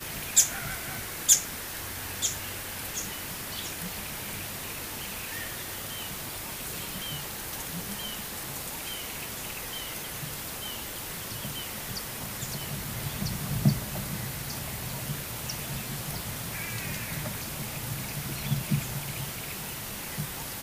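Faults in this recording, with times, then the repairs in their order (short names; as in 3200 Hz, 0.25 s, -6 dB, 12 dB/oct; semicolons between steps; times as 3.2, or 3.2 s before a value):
0.95 pop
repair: de-click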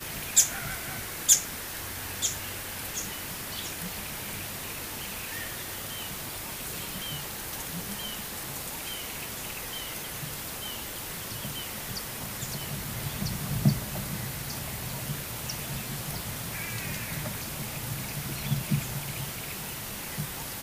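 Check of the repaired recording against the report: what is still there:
none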